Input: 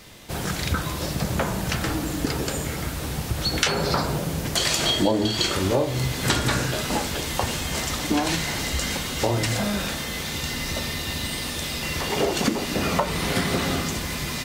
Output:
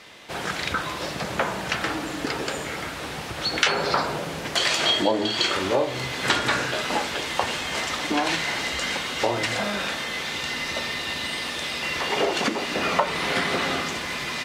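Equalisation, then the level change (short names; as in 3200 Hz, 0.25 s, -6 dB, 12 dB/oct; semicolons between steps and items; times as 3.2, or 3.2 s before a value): air absorption 64 m; tone controls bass -2 dB, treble -15 dB; RIAA curve recording; +3.0 dB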